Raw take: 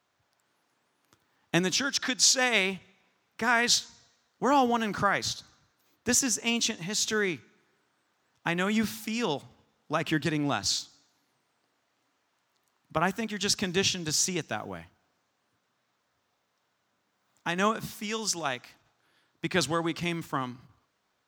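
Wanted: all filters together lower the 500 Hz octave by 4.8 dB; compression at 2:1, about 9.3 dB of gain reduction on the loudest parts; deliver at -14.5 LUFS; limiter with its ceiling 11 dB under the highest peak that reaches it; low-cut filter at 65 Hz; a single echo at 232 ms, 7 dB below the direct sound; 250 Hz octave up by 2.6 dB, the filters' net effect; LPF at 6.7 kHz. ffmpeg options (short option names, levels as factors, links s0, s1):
-af "highpass=65,lowpass=6700,equalizer=f=250:t=o:g=5.5,equalizer=f=500:t=o:g=-8.5,acompressor=threshold=0.0141:ratio=2,alimiter=level_in=1.33:limit=0.0631:level=0:latency=1,volume=0.75,aecho=1:1:232:0.447,volume=14.1"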